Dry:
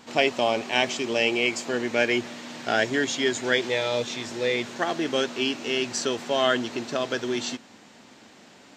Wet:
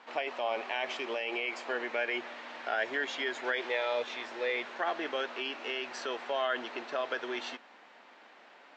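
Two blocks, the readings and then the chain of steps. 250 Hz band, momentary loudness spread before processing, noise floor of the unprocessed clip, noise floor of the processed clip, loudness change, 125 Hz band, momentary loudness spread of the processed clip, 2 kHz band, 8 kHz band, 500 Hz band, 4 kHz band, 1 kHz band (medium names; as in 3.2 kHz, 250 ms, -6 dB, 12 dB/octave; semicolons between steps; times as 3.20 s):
-15.0 dB, 6 LU, -51 dBFS, -57 dBFS, -9.0 dB, under -25 dB, 6 LU, -6.5 dB, -19.5 dB, -9.0 dB, -11.0 dB, -6.0 dB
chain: peak limiter -17 dBFS, peak gain reduction 11 dB; band-pass 640–2300 Hz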